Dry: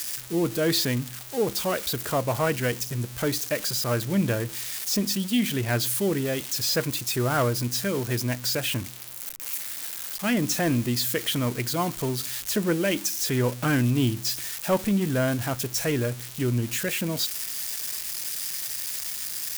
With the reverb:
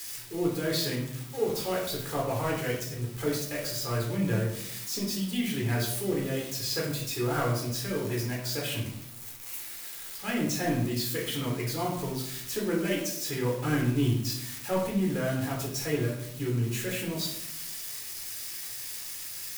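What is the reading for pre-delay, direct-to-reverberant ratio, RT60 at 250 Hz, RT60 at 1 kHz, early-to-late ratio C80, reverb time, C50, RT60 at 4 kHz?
9 ms, -3.0 dB, 1.1 s, 0.60 s, 7.5 dB, 0.75 s, 4.5 dB, 0.45 s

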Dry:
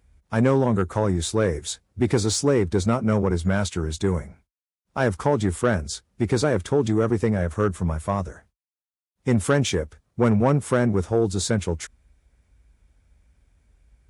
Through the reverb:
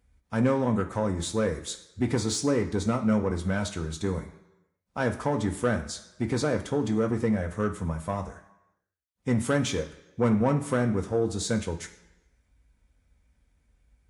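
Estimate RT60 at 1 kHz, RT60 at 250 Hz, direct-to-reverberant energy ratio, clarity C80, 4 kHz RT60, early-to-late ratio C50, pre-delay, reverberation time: 0.95 s, 0.80 s, 3.5 dB, 14.0 dB, 0.85 s, 11.5 dB, 3 ms, 0.95 s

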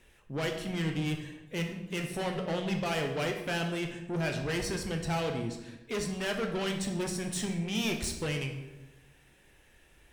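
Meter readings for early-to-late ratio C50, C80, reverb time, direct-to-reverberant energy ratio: 7.0 dB, 9.0 dB, 1.0 s, 3.5 dB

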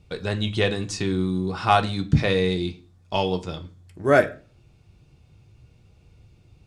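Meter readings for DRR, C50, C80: 4.5 dB, 17.5 dB, 22.5 dB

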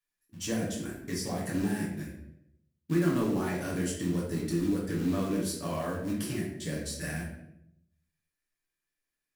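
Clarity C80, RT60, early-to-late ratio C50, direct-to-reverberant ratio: 7.0 dB, 0.80 s, 3.5 dB, -4.5 dB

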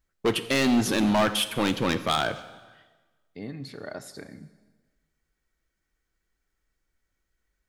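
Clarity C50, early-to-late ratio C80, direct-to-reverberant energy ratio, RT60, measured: 13.0 dB, 15.0 dB, 10.5 dB, 1.3 s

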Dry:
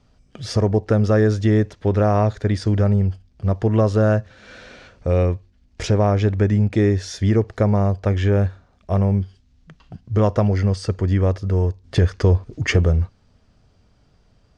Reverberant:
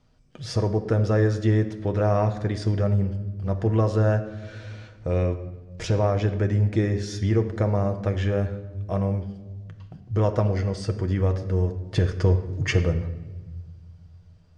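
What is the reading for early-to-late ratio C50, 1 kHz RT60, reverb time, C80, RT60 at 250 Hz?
11.0 dB, 1.1 s, 1.2 s, 13.0 dB, 2.3 s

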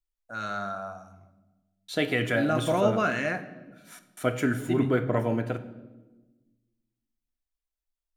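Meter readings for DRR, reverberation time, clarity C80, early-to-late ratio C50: 10.0 dB, 1.2 s, 15.0 dB, 13.0 dB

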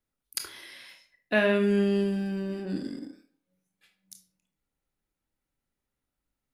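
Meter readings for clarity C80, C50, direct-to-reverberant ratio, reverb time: 15.5 dB, 10.5 dB, 6.0 dB, 0.50 s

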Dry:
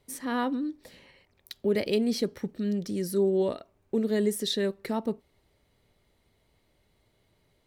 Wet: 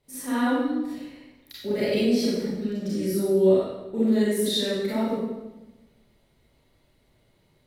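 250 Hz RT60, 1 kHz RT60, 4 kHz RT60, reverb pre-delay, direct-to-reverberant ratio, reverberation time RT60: 1.3 s, 1.0 s, 0.85 s, 29 ms, -9.5 dB, 1.1 s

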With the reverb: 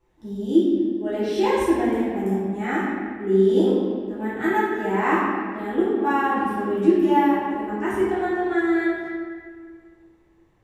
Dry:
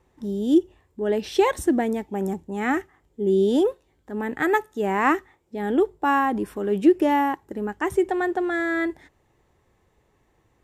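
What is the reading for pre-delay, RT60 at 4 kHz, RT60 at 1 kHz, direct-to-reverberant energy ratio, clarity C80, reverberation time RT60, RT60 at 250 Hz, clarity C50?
3 ms, 1.3 s, 1.7 s, -12.0 dB, 0.5 dB, 1.8 s, 2.5 s, -2.0 dB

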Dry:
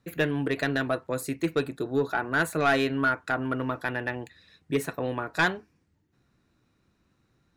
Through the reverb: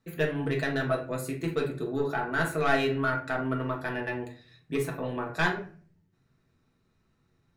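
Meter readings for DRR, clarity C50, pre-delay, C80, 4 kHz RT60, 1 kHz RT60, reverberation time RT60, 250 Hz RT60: -1.0 dB, 8.0 dB, 5 ms, 14.0 dB, 0.30 s, 0.40 s, 0.45 s, 0.70 s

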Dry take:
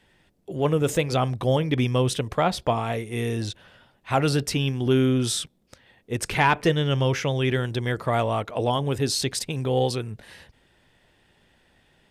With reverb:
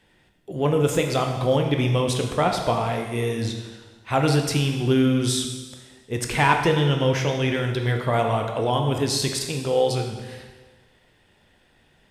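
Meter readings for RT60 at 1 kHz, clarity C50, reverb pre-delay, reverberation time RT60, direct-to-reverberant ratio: 1.4 s, 5.5 dB, 6 ms, 1.4 s, 3.0 dB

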